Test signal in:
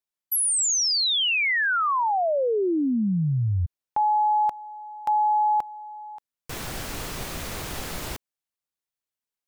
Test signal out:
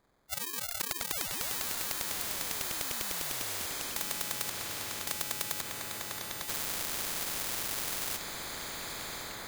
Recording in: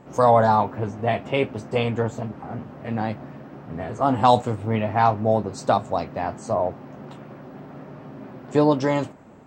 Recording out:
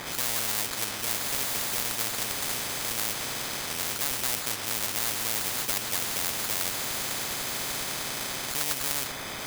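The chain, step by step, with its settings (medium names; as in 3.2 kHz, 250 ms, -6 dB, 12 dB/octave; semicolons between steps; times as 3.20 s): knee-point frequency compression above 3.6 kHz 4:1; in parallel at 0 dB: compression, threshold -34 dBFS; on the sum: sample-rate reducer 2.8 kHz, jitter 0%; on a send: echo that smears into a reverb 1139 ms, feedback 42%, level -12.5 dB; on the sum: crackling interface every 0.10 s, samples 64, repeat, from 0.71 s; spectrum-flattening compressor 10:1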